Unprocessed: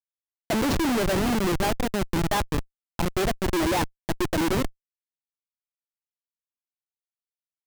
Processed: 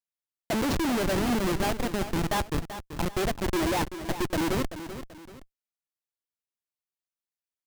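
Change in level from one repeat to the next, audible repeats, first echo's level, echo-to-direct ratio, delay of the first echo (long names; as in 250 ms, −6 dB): −8.5 dB, 2, −11.5 dB, −11.0 dB, 385 ms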